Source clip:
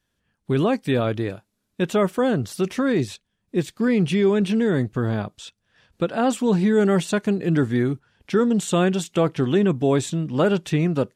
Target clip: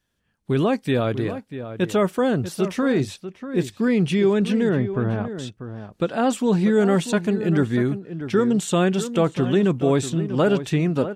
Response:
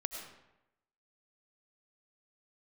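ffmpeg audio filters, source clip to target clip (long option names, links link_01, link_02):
-filter_complex "[0:a]asettb=1/sr,asplit=3[link_01][link_02][link_03];[link_01]atrim=end=4.694[link_04];[link_02]atrim=start=4.69:end=5.35,asetpts=PTS-STARTPTS,afade=type=in:duration=0.004:curve=qsin,afade=type=out:start_time=0.656:duration=0.004:curve=qsin,lowpass=2100[link_05];[link_03]atrim=start=5.346[link_06];[link_04][link_05]acrossfade=duration=0.004:curve1=hsin:curve2=qsin[link_07];[link_07][link_06]acrossfade=duration=0.004:curve1=qsin:curve2=hsin,asplit=2[link_08][link_09];[link_09]adelay=641.4,volume=-11dB,highshelf=frequency=4000:gain=-14.4[link_10];[link_08][link_10]amix=inputs=2:normalize=0"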